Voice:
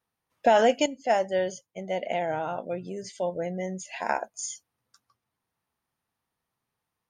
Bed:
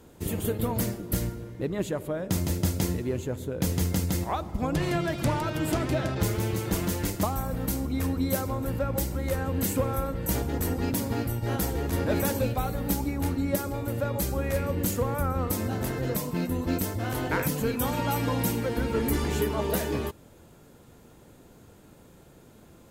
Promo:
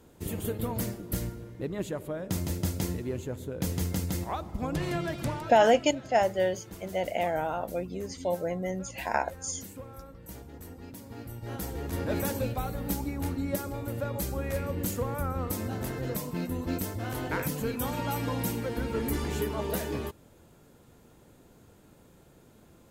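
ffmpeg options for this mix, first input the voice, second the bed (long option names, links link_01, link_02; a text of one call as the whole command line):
ffmpeg -i stem1.wav -i stem2.wav -filter_complex "[0:a]adelay=5050,volume=-0.5dB[link_01];[1:a]volume=9dB,afade=type=out:start_time=5.12:duration=0.59:silence=0.223872,afade=type=in:start_time=11.03:duration=1.11:silence=0.223872[link_02];[link_01][link_02]amix=inputs=2:normalize=0" out.wav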